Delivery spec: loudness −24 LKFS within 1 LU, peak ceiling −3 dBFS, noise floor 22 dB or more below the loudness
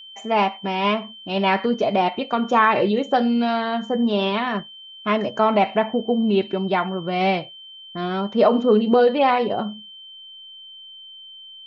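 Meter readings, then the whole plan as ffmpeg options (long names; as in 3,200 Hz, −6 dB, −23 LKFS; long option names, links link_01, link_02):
interfering tone 3,100 Hz; level of the tone −39 dBFS; integrated loudness −20.5 LKFS; sample peak −5.0 dBFS; target loudness −24.0 LKFS
→ -af "bandreject=frequency=3100:width=30"
-af "volume=-3.5dB"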